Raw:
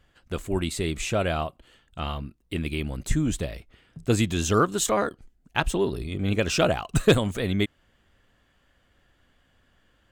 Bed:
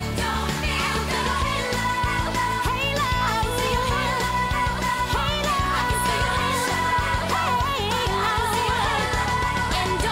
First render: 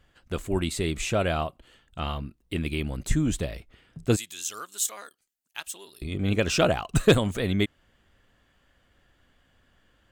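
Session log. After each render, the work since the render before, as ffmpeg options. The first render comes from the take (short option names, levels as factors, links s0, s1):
-filter_complex "[0:a]asettb=1/sr,asplit=3[s0][s1][s2];[s0]atrim=end=4.164[s3];[s1]atrim=start=4.16:end=6.02,asetpts=PTS-STARTPTS,afade=t=in:d=0.004:c=qsin,afade=t=out:st=1.856:d=0.004:c=qsin,aderivative[s4];[s2]atrim=start=6.016[s5];[s3][s4]acrossfade=d=0.004:c1=hsin:c2=qsin[s6];[s6][s5]acrossfade=d=0.004:c1=qsin:c2=hsin"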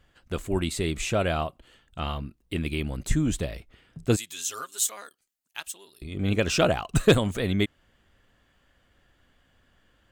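-filter_complex "[0:a]asettb=1/sr,asplit=3[s0][s1][s2];[s0]atrim=end=4.294[s3];[s1]atrim=start=4.29:end=4.88,asetpts=PTS-STARTPTS,afade=t=in:d=0.004:c=qsin,afade=t=out:st=0.586:d=0.004:c=qsin,aecho=1:1:7.5:0.7,atrim=end_sample=26019[s4];[s2]atrim=start=4.876[s5];[s3][s4]acrossfade=d=0.004:c1=hsin:c2=qsin[s6];[s6][s5]acrossfade=d=0.004:c1=qsin:c2=hsin,asplit=3[s7][s8][s9];[s7]atrim=end=5.722[s10];[s8]atrim=start=5.718:end=6.172,asetpts=PTS-STARTPTS,volume=0.596[s11];[s9]atrim=start=6.168[s12];[s10][s11]acrossfade=d=0.004:c1=hsin:c2=hsin[s13];[s13][s12]acrossfade=d=0.004:c1=hsin:c2=hsin"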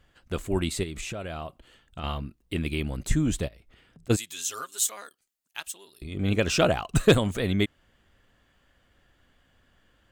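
-filter_complex "[0:a]asettb=1/sr,asplit=3[s0][s1][s2];[s0]atrim=end=0.834[s3];[s1]atrim=start=0.83:end=2.04,asetpts=PTS-STARTPTS,afade=t=in:d=0.004:c=qsin,afade=t=out:st=1.206:d=0.004:c=qsin,acompressor=threshold=0.0282:ratio=8:attack=3.2:release=140:knee=1:detection=peak[s4];[s2]atrim=start=2.036[s5];[s3][s4]acrossfade=d=0.004:c1=hsin:c2=qsin[s6];[s6][s5]acrossfade=d=0.004:c1=qsin:c2=hsin,asplit=3[s7][s8][s9];[s7]afade=t=out:st=3.47:d=0.02[s10];[s8]acompressor=threshold=0.00355:ratio=8:attack=3.2:release=140:knee=1:detection=peak,afade=t=in:st=3.47:d=0.02,afade=t=out:st=4.09:d=0.02[s11];[s9]afade=t=in:st=4.09:d=0.02[s12];[s10][s11][s12]amix=inputs=3:normalize=0"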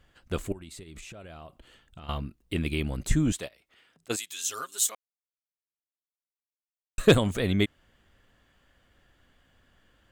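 -filter_complex "[0:a]asettb=1/sr,asplit=3[s0][s1][s2];[s0]atrim=end=0.524[s3];[s1]atrim=start=0.52:end=2.09,asetpts=PTS-STARTPTS,afade=t=in:d=0.004:c=qsin,afade=t=out:st=1.566:d=0.004:c=qsin,acompressor=threshold=0.00891:ratio=8:attack=3.2:release=140:knee=1:detection=peak[s4];[s2]atrim=start=2.086[s5];[s3][s4]acrossfade=d=0.004:c1=hsin:c2=qsin[s6];[s6][s5]acrossfade=d=0.004:c1=qsin:c2=hsin,asettb=1/sr,asplit=3[s7][s8][s9];[s7]atrim=end=3.324[s10];[s8]atrim=start=3.32:end=4.44,asetpts=PTS-STARTPTS,afade=t=in:d=0.004:c=qsin,afade=t=out:st=1.116:d=0.004:c=qsin,highpass=f=810:p=1[s11];[s9]atrim=start=4.436[s12];[s10][s11]acrossfade=d=0.004:c1=hsin:c2=qsin[s13];[s13][s12]acrossfade=d=0.004:c1=qsin:c2=hsin,asplit=3[s14][s15][s16];[s14]atrim=end=4.95,asetpts=PTS-STARTPTS,afade=t=out:st=4.946:d=0.004:c=hsin[s17];[s15]atrim=start=4.95:end=6.98,asetpts=PTS-STARTPTS,volume=0[s18];[s16]atrim=start=6.98,asetpts=PTS-STARTPTS,afade=t=in:d=0.004:c=hsin[s19];[s17][s18][s19]concat=n=3:v=0:a=1"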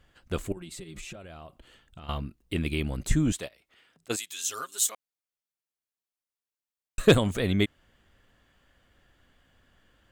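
-filter_complex "[0:a]asettb=1/sr,asplit=3[s0][s1][s2];[s0]atrim=end=0.564[s3];[s1]atrim=start=0.56:end=1.16,asetpts=PTS-STARTPTS,afade=t=in:d=0.004:c=qsin,afade=t=out:st=0.596:d=0.004:c=qsin,aecho=1:1:5.6:0.97,atrim=end_sample=26460[s4];[s2]atrim=start=1.156[s5];[s3][s4]acrossfade=d=0.004:c1=hsin:c2=qsin[s6];[s6][s5]acrossfade=d=0.004:c1=qsin:c2=hsin"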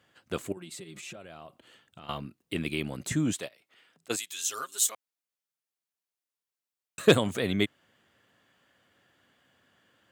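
-af "highpass=f=99:w=0.5412,highpass=f=99:w=1.3066,lowshelf=f=160:g=-7"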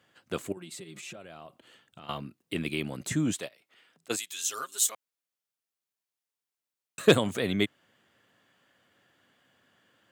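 -af "highpass=89"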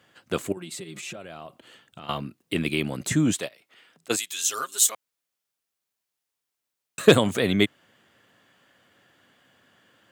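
-af "volume=2,alimiter=limit=0.891:level=0:latency=1"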